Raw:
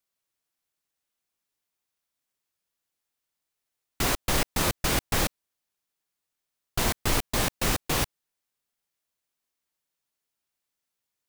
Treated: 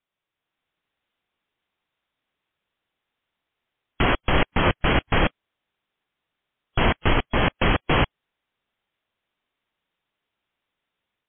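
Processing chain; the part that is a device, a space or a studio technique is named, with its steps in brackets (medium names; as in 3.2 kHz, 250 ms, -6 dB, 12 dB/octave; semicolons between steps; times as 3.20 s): low-bitrate web radio (level rider gain up to 5.5 dB; peak limiter -11 dBFS, peak gain reduction 5 dB; trim +4.5 dB; MP3 32 kbps 8 kHz)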